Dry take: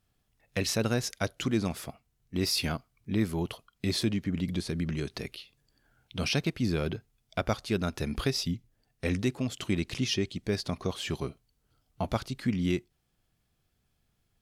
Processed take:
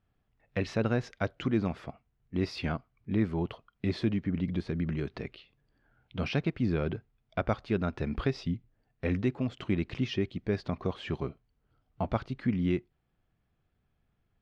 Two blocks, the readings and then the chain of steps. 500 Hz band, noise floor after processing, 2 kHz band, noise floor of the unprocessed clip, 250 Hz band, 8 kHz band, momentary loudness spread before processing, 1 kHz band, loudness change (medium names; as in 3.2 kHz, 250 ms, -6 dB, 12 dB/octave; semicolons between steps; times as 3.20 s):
0.0 dB, -77 dBFS, -2.5 dB, -76 dBFS, 0.0 dB, under -15 dB, 9 LU, 0.0 dB, -1.0 dB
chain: low-pass 2.2 kHz 12 dB/octave